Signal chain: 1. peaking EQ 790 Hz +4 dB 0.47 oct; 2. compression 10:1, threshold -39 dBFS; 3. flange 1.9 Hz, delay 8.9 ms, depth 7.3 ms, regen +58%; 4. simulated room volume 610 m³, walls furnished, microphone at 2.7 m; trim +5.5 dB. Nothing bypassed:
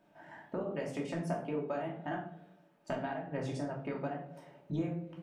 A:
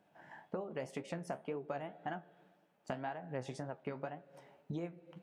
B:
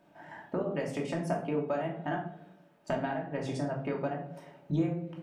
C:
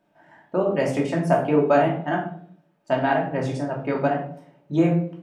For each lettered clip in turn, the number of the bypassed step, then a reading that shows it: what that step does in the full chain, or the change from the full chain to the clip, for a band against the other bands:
4, echo-to-direct 1.0 dB to none; 3, loudness change +4.5 LU; 2, mean gain reduction 12.5 dB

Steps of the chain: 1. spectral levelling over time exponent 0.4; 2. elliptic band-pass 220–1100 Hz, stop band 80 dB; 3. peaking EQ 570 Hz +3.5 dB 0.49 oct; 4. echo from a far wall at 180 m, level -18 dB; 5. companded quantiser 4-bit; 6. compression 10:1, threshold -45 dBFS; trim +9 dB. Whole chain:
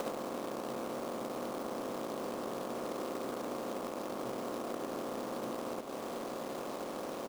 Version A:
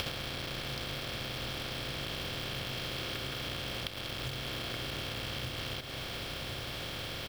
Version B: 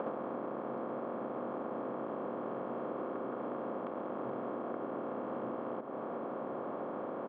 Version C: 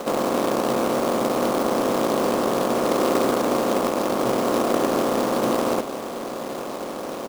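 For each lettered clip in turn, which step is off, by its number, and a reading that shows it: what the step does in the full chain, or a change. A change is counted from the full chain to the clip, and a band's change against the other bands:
2, 4 kHz band +16.0 dB; 5, distortion -13 dB; 6, mean gain reduction 14.0 dB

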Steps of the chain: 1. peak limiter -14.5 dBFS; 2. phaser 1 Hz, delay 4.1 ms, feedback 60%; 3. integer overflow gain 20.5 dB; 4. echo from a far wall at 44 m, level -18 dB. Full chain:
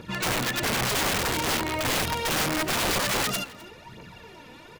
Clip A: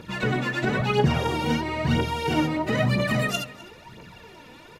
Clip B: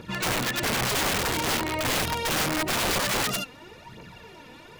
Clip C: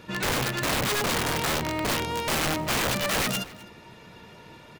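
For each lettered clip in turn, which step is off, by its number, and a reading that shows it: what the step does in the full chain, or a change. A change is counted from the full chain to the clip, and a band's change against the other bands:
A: 3, crest factor change +7.5 dB; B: 4, echo-to-direct -19.0 dB to none; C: 2, momentary loudness spread change -2 LU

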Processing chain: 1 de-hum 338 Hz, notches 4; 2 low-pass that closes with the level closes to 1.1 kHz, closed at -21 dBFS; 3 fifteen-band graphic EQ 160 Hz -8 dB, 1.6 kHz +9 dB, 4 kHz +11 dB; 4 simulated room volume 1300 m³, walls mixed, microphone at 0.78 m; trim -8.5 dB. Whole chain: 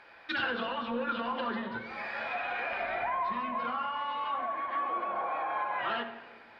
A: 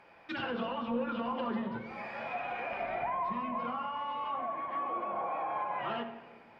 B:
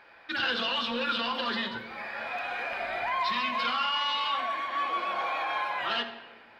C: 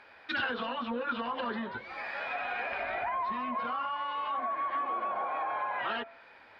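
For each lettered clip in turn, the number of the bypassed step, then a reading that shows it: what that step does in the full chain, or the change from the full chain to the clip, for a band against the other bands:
3, 250 Hz band +6.5 dB; 2, 4 kHz band +11.5 dB; 4, echo-to-direct -7.0 dB to none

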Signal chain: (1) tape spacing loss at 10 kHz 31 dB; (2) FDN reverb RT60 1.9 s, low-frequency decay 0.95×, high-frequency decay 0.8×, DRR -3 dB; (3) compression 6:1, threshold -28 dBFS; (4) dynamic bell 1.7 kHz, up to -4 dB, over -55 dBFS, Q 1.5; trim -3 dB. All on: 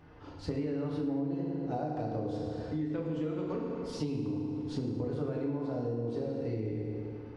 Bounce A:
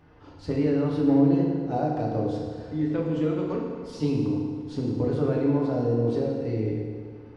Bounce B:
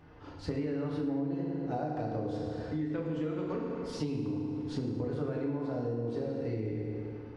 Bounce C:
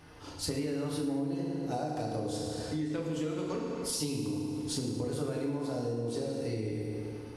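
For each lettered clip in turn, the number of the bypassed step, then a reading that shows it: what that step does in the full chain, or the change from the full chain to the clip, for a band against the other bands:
3, crest factor change +3.0 dB; 4, 2 kHz band +3.0 dB; 1, 4 kHz band +11.0 dB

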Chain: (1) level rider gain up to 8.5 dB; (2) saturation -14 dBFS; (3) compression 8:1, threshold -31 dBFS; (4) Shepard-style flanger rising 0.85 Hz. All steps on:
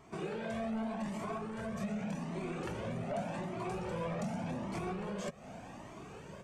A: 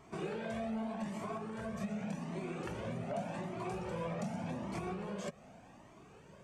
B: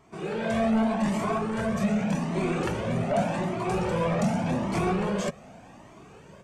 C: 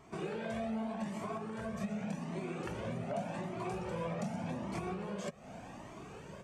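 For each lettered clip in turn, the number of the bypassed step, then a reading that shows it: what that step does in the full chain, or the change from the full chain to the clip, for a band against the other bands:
1, crest factor change +1.5 dB; 3, mean gain reduction 9.5 dB; 2, distortion -15 dB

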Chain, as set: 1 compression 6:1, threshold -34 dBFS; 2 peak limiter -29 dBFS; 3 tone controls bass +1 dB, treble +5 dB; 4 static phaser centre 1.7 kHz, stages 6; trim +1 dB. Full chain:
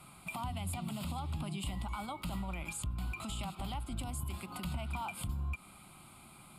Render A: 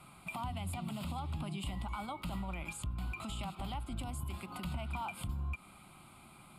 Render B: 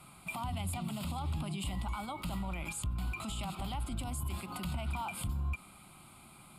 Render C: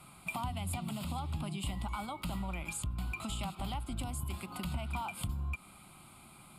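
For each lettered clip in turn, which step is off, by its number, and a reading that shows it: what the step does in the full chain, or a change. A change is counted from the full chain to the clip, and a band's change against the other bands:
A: 3, 8 kHz band -4.0 dB; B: 1, loudness change +1.5 LU; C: 2, crest factor change +1.5 dB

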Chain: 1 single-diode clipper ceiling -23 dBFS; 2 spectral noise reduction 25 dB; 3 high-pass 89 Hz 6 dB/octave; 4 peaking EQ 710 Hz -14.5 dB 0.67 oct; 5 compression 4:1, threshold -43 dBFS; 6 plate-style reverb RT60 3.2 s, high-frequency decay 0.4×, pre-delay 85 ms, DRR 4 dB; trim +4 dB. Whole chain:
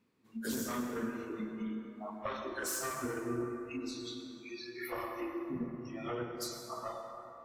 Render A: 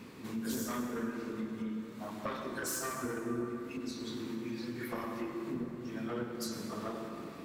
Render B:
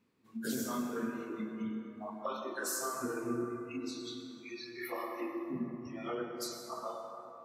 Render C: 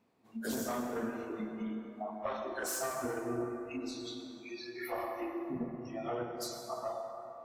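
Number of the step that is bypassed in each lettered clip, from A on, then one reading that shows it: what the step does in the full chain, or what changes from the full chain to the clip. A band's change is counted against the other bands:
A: 2, 125 Hz band +2.5 dB; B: 1, 125 Hz band -2.5 dB; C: 4, 500 Hz band +3.0 dB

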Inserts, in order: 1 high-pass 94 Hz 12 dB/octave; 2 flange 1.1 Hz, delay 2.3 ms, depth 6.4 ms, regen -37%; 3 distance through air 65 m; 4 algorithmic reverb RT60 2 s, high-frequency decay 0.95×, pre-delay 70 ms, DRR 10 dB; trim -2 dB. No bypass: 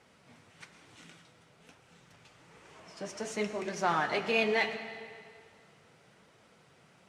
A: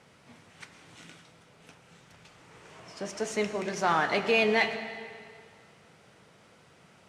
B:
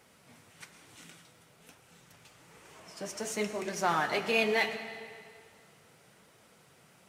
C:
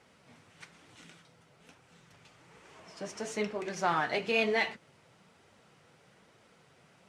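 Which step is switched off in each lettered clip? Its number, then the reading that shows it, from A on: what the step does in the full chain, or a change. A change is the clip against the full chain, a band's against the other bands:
2, loudness change +4.0 LU; 3, 8 kHz band +5.0 dB; 4, momentary loudness spread change -5 LU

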